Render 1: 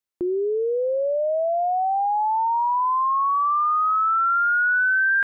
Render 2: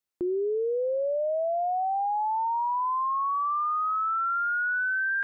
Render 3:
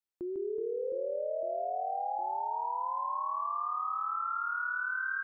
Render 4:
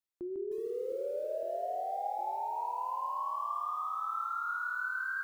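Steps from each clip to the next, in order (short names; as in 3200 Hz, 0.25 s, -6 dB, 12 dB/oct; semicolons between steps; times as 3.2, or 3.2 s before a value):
dynamic EQ 610 Hz, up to +6 dB, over -37 dBFS, Q 3.9; limiter -24 dBFS, peak gain reduction 10.5 dB
reverse bouncing-ball echo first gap 0.15 s, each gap 1.5×, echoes 5; gain -9 dB
on a send at -14.5 dB: reverb RT60 0.85 s, pre-delay 3 ms; on the sum: lo-fi delay 0.306 s, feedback 35%, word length 9-bit, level -8 dB; gain -2.5 dB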